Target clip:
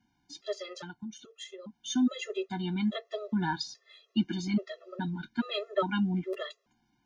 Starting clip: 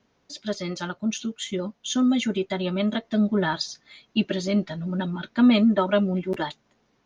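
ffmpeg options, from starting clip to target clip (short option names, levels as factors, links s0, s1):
-filter_complex "[0:a]asettb=1/sr,asplit=3[s0][s1][s2];[s0]atrim=end=0.754[s3];[s1]atrim=start=0.75:end=1.74,asetpts=PTS-STARTPTS,afade=t=in:d=0.004:c=qsin,afade=t=out:st=0.986:d=0.004:c=qsin,acompressor=threshold=0.0224:ratio=16[s4];[s2]atrim=start=1.736[s5];[s3][s4]acrossfade=d=0.004:c1=hsin:c2=qsin[s6];[s6][s5]acrossfade=d=0.004:c1=qsin:c2=hsin,asplit=3[s7][s8][s9];[s7]afade=t=out:st=5.07:d=0.02[s10];[s8]equalizer=f=680:w=0.74:g=-7.5,afade=t=in:st=5.07:d=0.02,afade=t=out:st=5.57:d=0.02[s11];[s9]afade=t=in:st=5.57:d=0.02[s12];[s10][s11][s12]amix=inputs=3:normalize=0,afftfilt=real='re*gt(sin(2*PI*1.2*pts/sr)*(1-2*mod(floor(b*sr/1024/350),2)),0)':imag='im*gt(sin(2*PI*1.2*pts/sr)*(1-2*mod(floor(b*sr/1024/350),2)),0)':win_size=1024:overlap=0.75,volume=0.631"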